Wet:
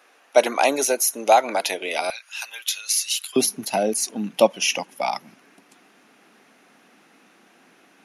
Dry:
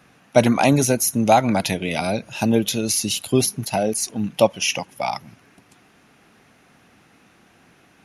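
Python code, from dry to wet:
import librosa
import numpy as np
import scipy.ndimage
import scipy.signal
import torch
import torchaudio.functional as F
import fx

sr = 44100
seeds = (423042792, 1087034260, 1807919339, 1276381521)

y = fx.highpass(x, sr, hz=fx.steps((0.0, 380.0), (2.1, 1300.0), (3.36, 210.0)), slope=24)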